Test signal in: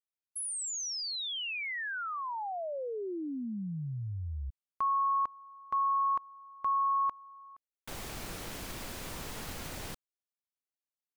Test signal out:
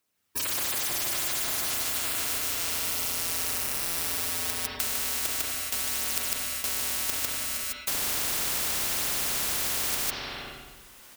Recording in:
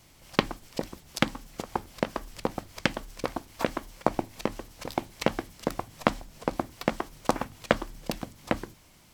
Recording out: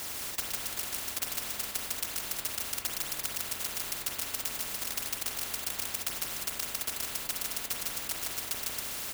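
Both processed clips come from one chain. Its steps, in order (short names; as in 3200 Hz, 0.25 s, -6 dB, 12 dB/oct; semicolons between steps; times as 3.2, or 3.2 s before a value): FFT order left unsorted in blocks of 256 samples; recorder AGC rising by 5.4 dB/s; HPF 50 Hz; reverse; compressor 4:1, threshold -24 dBFS; reverse; phaser 0.33 Hz, delay 4.8 ms, feedback 36%; on a send: echo 0.152 s -3.5 dB; on the sum: spring tank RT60 1.1 s, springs 32/43 ms, chirp 50 ms, DRR 0 dB; spectral compressor 10:1; gain -2 dB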